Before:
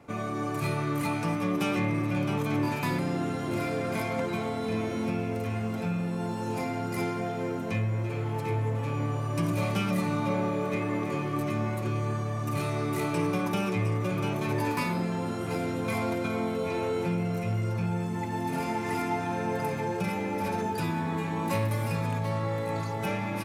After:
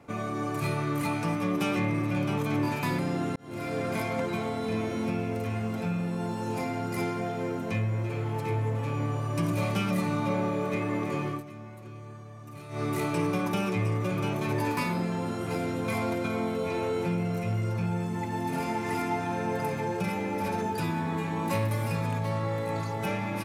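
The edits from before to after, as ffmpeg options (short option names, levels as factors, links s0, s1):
-filter_complex "[0:a]asplit=4[s0][s1][s2][s3];[s0]atrim=end=3.36,asetpts=PTS-STARTPTS,afade=t=out:st=3.356:d=0.004:c=hsin[s4];[s1]atrim=start=3.36:end=11.43,asetpts=PTS-STARTPTS,afade=t=in:d=0.43,afade=t=out:st=7.93:d=0.14:silence=0.199526[s5];[s2]atrim=start=11.43:end=12.69,asetpts=PTS-STARTPTS,volume=0.2[s6];[s3]atrim=start=12.69,asetpts=PTS-STARTPTS,afade=t=in:d=0.14:silence=0.199526[s7];[s4][s5][s6][s7]concat=n=4:v=0:a=1"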